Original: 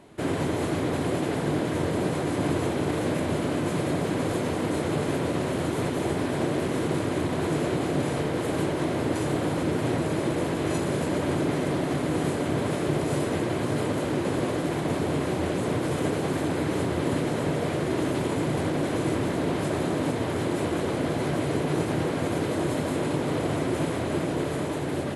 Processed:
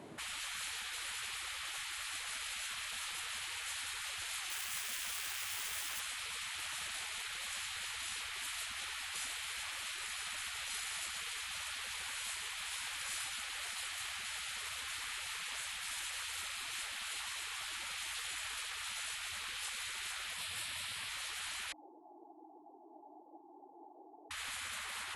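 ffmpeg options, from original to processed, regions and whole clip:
-filter_complex "[0:a]asettb=1/sr,asplit=3[a][b][c];[a]atrim=end=4.504[d];[b]atrim=start=4.5:end=6,asetpts=PTS-STARTPTS,afade=t=in:d=0.004:c=qsin,afade=t=out:st=1.496:d=0.004:c=qsin,equalizer=f=4.1k:w=5:g=-6.5,acrusher=bits=3:mode=log:mix=0:aa=0.000001,asoftclip=type=hard:threshold=-19.5dB[e];[c]atrim=start=5.996[f];[d][e]acrossfade=d=0.004:c1=hsin:c2=qsin[g];[g][f]acrossfade=d=0.004:c1=qsin:c2=hsin,asettb=1/sr,asplit=3[h][i][j];[h]atrim=end=20.364[k];[i]atrim=start=20.36:end=21.08,asetpts=PTS-STARTPTS,afade=t=in:d=0.004:c=qsin,afade=t=out:st=0.716:d=0.004:c=qsin,highpass=f=350:p=1,equalizer=f=6.5k:w=3.3:g=-6.5,asplit=2[l][m];[m]adelay=22,volume=-3dB[n];[l][n]amix=inputs=2:normalize=0,atrim=end_sample=31752[o];[j]atrim=start=21.076[p];[k][o]acrossfade=d=0.004:c1=hsin:c2=qsin[q];[q][p]acrossfade=d=0.004:c1=qsin:c2=hsin,asettb=1/sr,asplit=3[r][s][t];[r]atrim=end=21.724[u];[s]atrim=start=21.72:end=24.31,asetpts=PTS-STARTPTS,afade=t=in:d=0.004:c=qsin,afade=t=out:st=2.586:d=0.004:c=qsin,asuperpass=centerf=550:order=12:qfactor=1.5,aecho=1:1:3.7:0.63,atrim=end_sample=114219,aecho=1:1:160|320|480|640|800:0.178|0.0996|0.0558|0.0312|0.0175,atrim=end_sample=114219[v];[t]atrim=start=24.306[w];[u][v]acrossfade=d=0.004:c1=hsin:c2=qsin[x];[x][w]acrossfade=d=0.004:c1=qsin:c2=hsin,highpass=110,afftfilt=real='re*lt(hypot(re,im),0.0282)':imag='im*lt(hypot(re,im),0.0282)':win_size=1024:overlap=0.75"

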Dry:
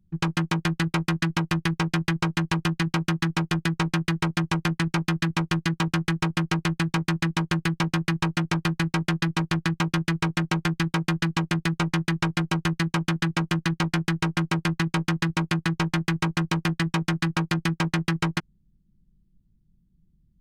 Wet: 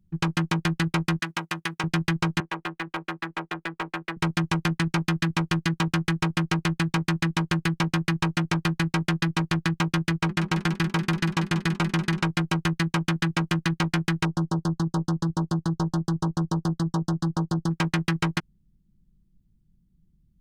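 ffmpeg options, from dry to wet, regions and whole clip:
-filter_complex "[0:a]asettb=1/sr,asplit=3[a][b][c];[a]atrim=end=1.194[d];[b]atrim=start=1.19:end=1.84,asetpts=PTS-STARTPTS,afade=t=in:d=0.004:c=qsin,afade=t=out:st=0.646:d=0.004:c=qsin,highpass=f=640:p=1,equalizer=f=4.7k:t=o:w=0.81:g=-3[e];[c]atrim=start=1.836[f];[d][e]acrossfade=d=0.004:c1=hsin:c2=qsin[g];[g][f]acrossfade=d=0.004:c1=qsin:c2=hsin,asettb=1/sr,asplit=3[h][i][j];[h]atrim=end=2.404[k];[i]atrim=start=2.4:end=4.17,asetpts=PTS-STARTPTS,afade=t=in:d=0.004:c=qsin,afade=t=out:st=1.766:d=0.004:c=qsin,acrossover=split=320 2800:gain=0.1 1 0.0891[l][m][n];[l][m][n]amix=inputs=3:normalize=0,asoftclip=type=hard:threshold=-22.5dB[o];[j]atrim=start=4.166[p];[k][o]acrossfade=d=0.004:c1=hsin:c2=qsin[q];[q][p]acrossfade=d=0.004:c1=qsin:c2=hsin,asettb=1/sr,asplit=3[r][s][t];[r]atrim=end=10.104[u];[s]atrim=start=10.1:end=12.23,asetpts=PTS-STARTPTS,afade=t=in:d=0.004:c=qsin,afade=t=out:st=2.126:d=0.004:c=qsin,asplit=4[v][w][x][y];[w]adelay=191,afreqshift=34,volume=-12dB[z];[x]adelay=382,afreqshift=68,volume=-21.4dB[aa];[y]adelay=573,afreqshift=102,volume=-30.7dB[ab];[v][z][aa][ab]amix=inputs=4:normalize=0,atrim=end_sample=93933,agate=range=-9dB:threshold=-32dB:ratio=16:release=100:detection=peak[ac];[t]atrim=start=12.226[ad];[u][ac]acrossfade=d=0.004:c1=hsin:c2=qsin[ae];[ae][ad]acrossfade=d=0.004:c1=qsin:c2=hsin,asettb=1/sr,asplit=3[af][ag][ah];[af]atrim=end=14.254[ai];[ag]atrim=start=14.25:end=17.71,asetpts=PTS-STARTPTS,afade=t=in:d=0.004:c=qsin,afade=t=out:st=3.456:d=0.004:c=qsin,adynamicsmooth=sensitivity=1.5:basefreq=7.4k,asuperstop=centerf=2300:order=4:qfactor=0.63[aj];[ah]atrim=start=17.706[ak];[ai][aj]acrossfade=d=0.004:c1=hsin:c2=qsin[al];[al][ak]acrossfade=d=0.004:c1=qsin:c2=hsin"

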